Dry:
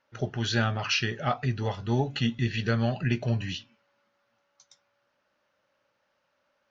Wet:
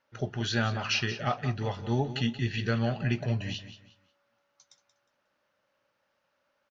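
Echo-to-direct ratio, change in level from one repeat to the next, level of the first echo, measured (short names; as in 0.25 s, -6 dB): -12.0 dB, -11.0 dB, -12.5 dB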